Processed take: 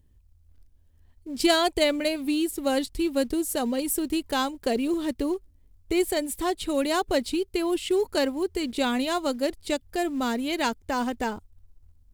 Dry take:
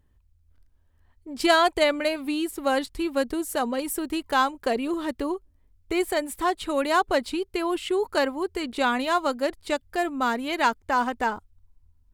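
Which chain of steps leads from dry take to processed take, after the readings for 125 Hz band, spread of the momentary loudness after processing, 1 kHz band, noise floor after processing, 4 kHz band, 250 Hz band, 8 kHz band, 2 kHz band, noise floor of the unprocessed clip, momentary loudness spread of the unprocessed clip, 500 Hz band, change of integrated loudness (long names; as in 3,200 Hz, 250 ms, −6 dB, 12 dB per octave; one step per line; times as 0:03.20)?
can't be measured, 6 LU, −5.5 dB, −60 dBFS, +1.0 dB, +2.0 dB, +3.5 dB, −5.0 dB, −63 dBFS, 7 LU, −0.5 dB, −1.0 dB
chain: parametric band 1,200 Hz −12 dB 1.9 octaves
in parallel at −9.5 dB: floating-point word with a short mantissa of 2 bits
on the sum: level +1.5 dB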